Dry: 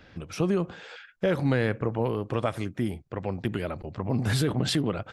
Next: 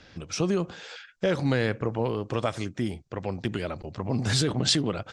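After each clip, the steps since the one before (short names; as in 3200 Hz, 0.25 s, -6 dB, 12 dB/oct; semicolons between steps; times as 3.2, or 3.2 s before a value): LPF 7200 Hz 24 dB/oct; tone controls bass -1 dB, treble +12 dB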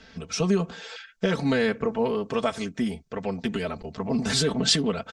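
comb 4.5 ms, depth 86%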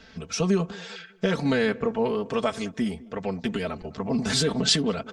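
tape echo 0.202 s, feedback 44%, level -19 dB, low-pass 1000 Hz; wow and flutter 25 cents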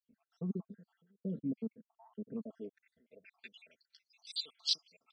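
random spectral dropouts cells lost 72%; band-pass sweep 220 Hz -> 4300 Hz, 2.4–3.6; gain -7.5 dB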